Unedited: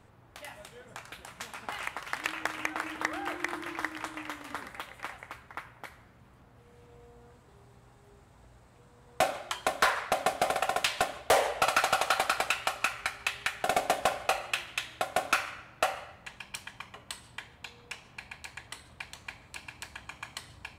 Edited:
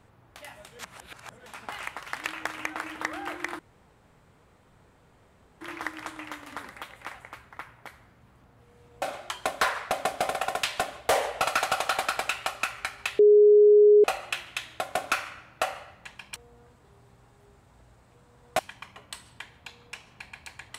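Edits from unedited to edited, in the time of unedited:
0.79–1.46 s: reverse
3.59 s: insert room tone 2.02 s
7.00–9.23 s: move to 16.57 s
13.40–14.25 s: bleep 417 Hz -12.5 dBFS

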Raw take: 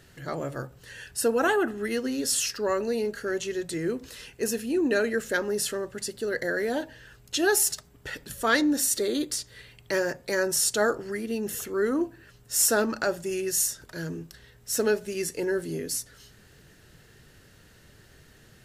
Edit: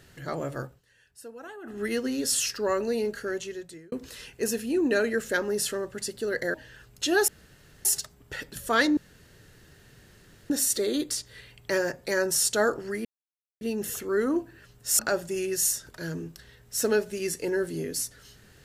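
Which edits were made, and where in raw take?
0.65–1.80 s: dip -19.5 dB, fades 0.17 s
3.15–3.92 s: fade out
6.54–6.85 s: delete
7.59 s: insert room tone 0.57 s
8.71 s: insert room tone 1.53 s
11.26 s: insert silence 0.56 s
12.64–12.94 s: delete

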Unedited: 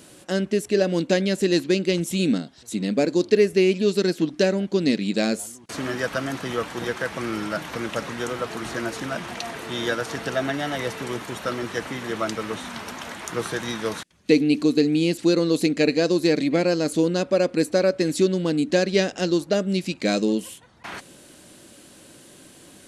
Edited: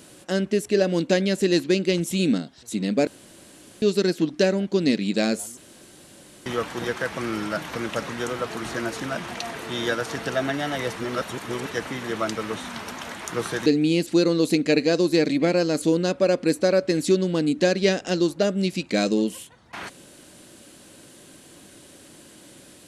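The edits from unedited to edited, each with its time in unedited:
3.07–3.82 s: room tone
5.57–6.46 s: room tone
10.96–11.71 s: reverse
13.66–14.77 s: delete

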